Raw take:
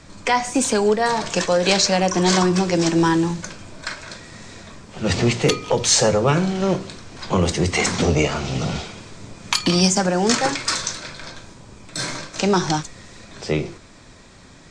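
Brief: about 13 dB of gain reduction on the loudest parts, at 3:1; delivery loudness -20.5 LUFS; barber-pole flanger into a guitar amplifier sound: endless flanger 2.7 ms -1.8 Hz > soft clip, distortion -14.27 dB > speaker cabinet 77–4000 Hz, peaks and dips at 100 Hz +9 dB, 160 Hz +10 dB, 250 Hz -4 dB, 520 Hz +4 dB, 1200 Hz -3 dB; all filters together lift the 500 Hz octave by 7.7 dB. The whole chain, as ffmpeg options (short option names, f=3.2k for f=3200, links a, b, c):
-filter_complex "[0:a]equalizer=f=500:t=o:g=6.5,acompressor=threshold=-27dB:ratio=3,asplit=2[a][b];[b]adelay=2.7,afreqshift=-1.8[c];[a][c]amix=inputs=2:normalize=1,asoftclip=threshold=-25dB,highpass=77,equalizer=f=100:t=q:w=4:g=9,equalizer=f=160:t=q:w=4:g=10,equalizer=f=250:t=q:w=4:g=-4,equalizer=f=520:t=q:w=4:g=4,equalizer=f=1.2k:t=q:w=4:g=-3,lowpass=f=4k:w=0.5412,lowpass=f=4k:w=1.3066,volume=12dB"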